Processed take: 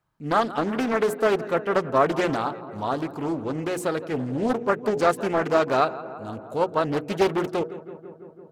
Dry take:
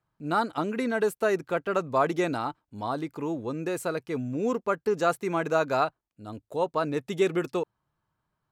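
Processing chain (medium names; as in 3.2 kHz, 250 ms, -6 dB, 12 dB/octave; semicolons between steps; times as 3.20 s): hum notches 60/120/180/240/300/360/420/480 Hz; on a send: filtered feedback delay 168 ms, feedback 78%, low-pass 2.1 kHz, level -15.5 dB; on the sum: loudspeaker Doppler distortion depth 0.46 ms; trim +4 dB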